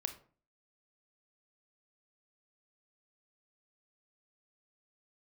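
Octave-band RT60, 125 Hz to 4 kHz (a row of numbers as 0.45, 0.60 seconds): 0.50, 0.50, 0.45, 0.40, 0.35, 0.25 seconds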